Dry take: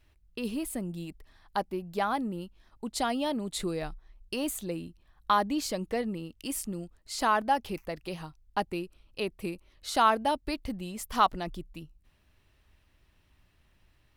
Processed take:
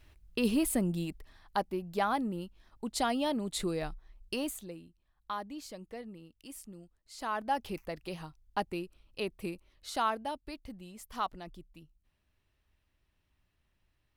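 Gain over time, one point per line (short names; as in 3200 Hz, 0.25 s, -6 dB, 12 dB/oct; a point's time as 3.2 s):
0.87 s +5 dB
1.57 s -1 dB
4.34 s -1 dB
4.83 s -13 dB
7.14 s -13 dB
7.62 s -3 dB
9.5 s -3 dB
10.41 s -10.5 dB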